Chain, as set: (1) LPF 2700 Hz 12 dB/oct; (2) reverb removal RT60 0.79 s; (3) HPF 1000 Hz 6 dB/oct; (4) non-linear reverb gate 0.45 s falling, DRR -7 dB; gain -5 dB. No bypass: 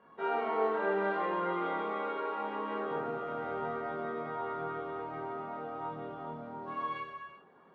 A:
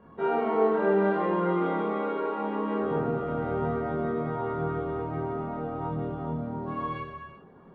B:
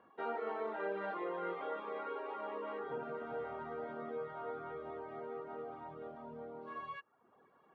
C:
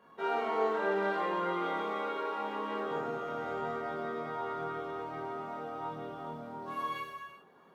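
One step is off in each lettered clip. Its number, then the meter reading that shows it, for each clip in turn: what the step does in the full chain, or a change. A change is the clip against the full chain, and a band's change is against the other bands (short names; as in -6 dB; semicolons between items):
3, 125 Hz band +11.0 dB; 4, momentary loudness spread change -2 LU; 1, 4 kHz band +4.5 dB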